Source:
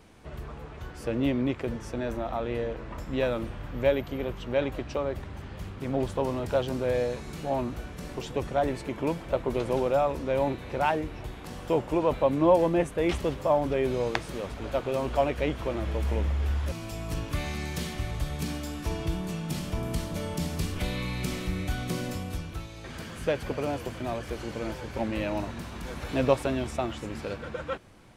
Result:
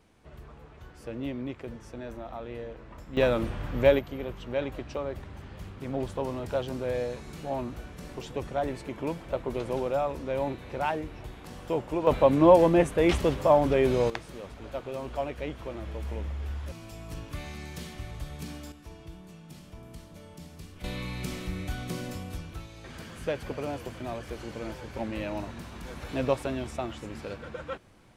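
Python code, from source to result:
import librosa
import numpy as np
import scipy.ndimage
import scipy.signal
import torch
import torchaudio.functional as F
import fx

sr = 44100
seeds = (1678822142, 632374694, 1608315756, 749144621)

y = fx.gain(x, sr, db=fx.steps((0.0, -8.0), (3.17, 3.5), (3.99, -3.5), (12.07, 3.5), (14.1, -7.0), (18.72, -15.0), (20.84, -3.5)))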